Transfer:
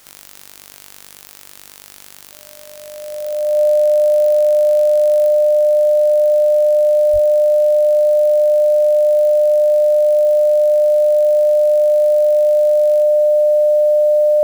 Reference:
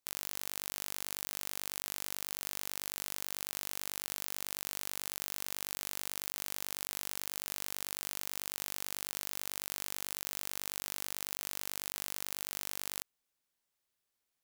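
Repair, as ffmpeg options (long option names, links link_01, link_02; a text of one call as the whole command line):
ffmpeg -i in.wav -filter_complex "[0:a]bandreject=frequency=600:width=30,asplit=3[link_01][link_02][link_03];[link_01]afade=type=out:start_time=7.12:duration=0.02[link_04];[link_02]highpass=frequency=140:width=0.5412,highpass=frequency=140:width=1.3066,afade=type=in:start_time=7.12:duration=0.02,afade=type=out:start_time=7.24:duration=0.02[link_05];[link_03]afade=type=in:start_time=7.24:duration=0.02[link_06];[link_04][link_05][link_06]amix=inputs=3:normalize=0,agate=range=-21dB:threshold=-32dB,asetnsamples=nb_out_samples=441:pad=0,asendcmd='5.28 volume volume 4.5dB',volume=0dB" out.wav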